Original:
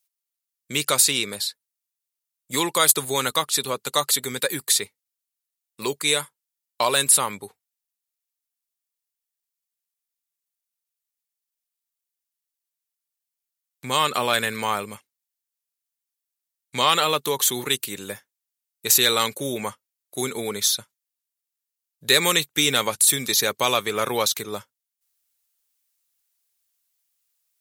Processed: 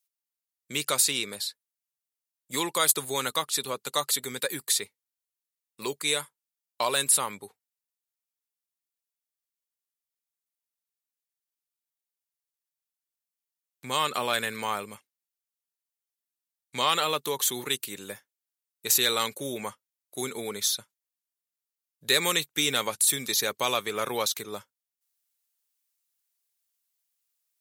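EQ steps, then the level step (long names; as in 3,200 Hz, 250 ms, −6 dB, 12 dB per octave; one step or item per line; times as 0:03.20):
low-shelf EQ 81 Hz −8 dB
−5.5 dB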